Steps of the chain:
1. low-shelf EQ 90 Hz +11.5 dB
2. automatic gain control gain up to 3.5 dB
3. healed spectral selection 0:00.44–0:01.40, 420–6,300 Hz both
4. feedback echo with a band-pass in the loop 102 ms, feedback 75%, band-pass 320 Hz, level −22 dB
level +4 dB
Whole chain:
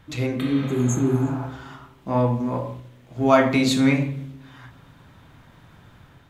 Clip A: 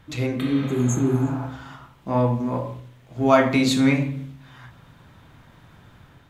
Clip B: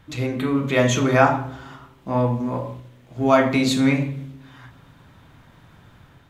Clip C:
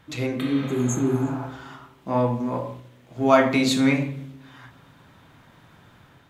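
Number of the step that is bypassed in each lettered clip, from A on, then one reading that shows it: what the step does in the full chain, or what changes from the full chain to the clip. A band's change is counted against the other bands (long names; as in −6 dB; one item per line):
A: 4, echo-to-direct ratio −27.5 dB to none audible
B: 3, 2 kHz band +2.5 dB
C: 1, 125 Hz band −4.0 dB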